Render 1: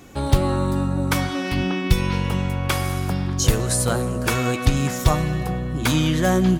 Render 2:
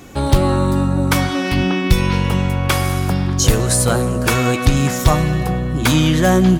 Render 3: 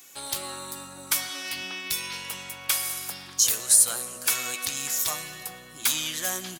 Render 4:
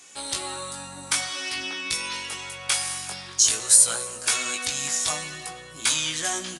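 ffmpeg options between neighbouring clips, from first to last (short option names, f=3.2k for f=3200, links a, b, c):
-af "acontrast=50"
-filter_complex "[0:a]aderivative,asplit=2[a][b];[b]adelay=116.6,volume=-27dB,highshelf=f=4k:g=-2.62[c];[a][c]amix=inputs=2:normalize=0"
-af "flanger=delay=18:depth=2.5:speed=0.51,aresample=22050,aresample=44100,volume=6.5dB"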